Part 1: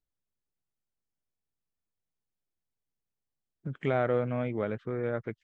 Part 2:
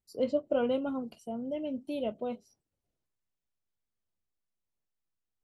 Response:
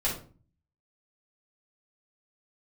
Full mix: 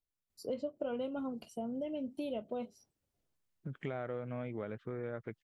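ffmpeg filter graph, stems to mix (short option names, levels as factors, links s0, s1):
-filter_complex "[0:a]volume=0.562[s0];[1:a]adelay=300,volume=1.19[s1];[s0][s1]amix=inputs=2:normalize=0,acompressor=threshold=0.0158:ratio=4"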